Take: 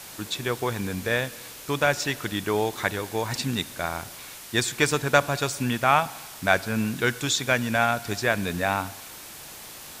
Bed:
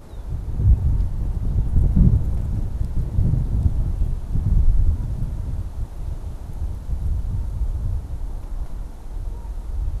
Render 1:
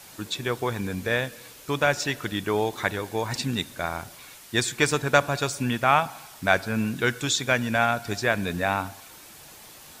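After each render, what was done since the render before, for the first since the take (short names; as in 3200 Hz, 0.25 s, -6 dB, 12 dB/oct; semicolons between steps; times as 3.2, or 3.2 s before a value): denoiser 6 dB, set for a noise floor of -42 dBFS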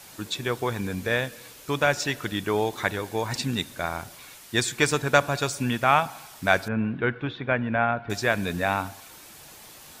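6.68–8.1 Bessel low-pass 1800 Hz, order 6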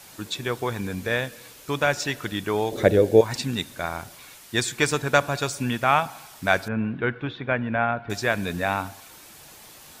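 2.71–3.21 resonant low shelf 720 Hz +10 dB, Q 3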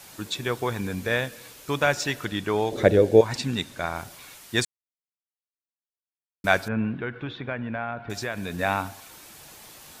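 2.25–3.96 high shelf 12000 Hz -11.5 dB; 4.65–6.44 mute; 6.95–8.59 compressor 2.5:1, threshold -29 dBFS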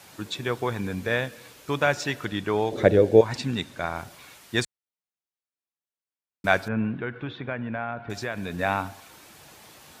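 HPF 53 Hz; high shelf 5100 Hz -7 dB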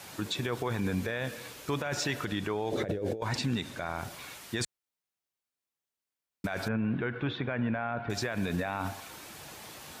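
negative-ratio compressor -27 dBFS, ratio -1; limiter -21.5 dBFS, peak gain reduction 11.5 dB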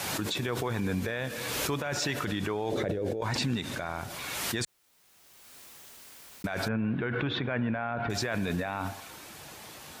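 backwards sustainer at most 24 dB/s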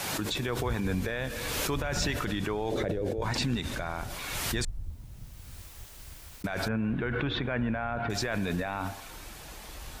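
add bed -20.5 dB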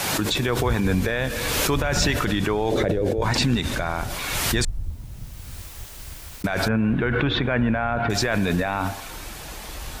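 gain +8.5 dB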